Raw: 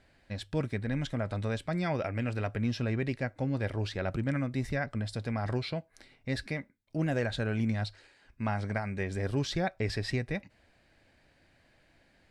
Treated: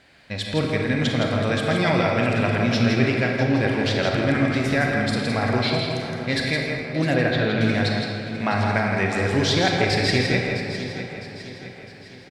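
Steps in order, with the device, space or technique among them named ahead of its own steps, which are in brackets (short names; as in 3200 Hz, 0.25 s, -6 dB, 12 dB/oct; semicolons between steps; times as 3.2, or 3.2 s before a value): PA in a hall (HPF 140 Hz 6 dB/oct; bell 3400 Hz +5 dB 2.1 oct; echo 0.165 s -5.5 dB; reverb RT60 2.1 s, pre-delay 29 ms, DRR 1 dB); 7.14–7.61 air absorption 200 m; feedback echo 0.658 s, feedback 47%, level -12 dB; gain +8.5 dB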